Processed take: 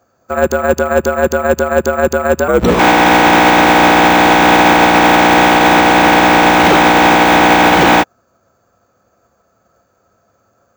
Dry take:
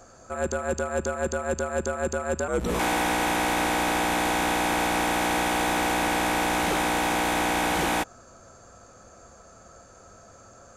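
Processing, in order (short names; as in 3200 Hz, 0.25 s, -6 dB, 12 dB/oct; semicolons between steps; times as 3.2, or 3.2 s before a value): HPF 84 Hz 12 dB/oct; air absorption 97 m; careless resampling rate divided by 2×, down none, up hold; maximiser +24.5 dB; upward expander 2.5:1, over -27 dBFS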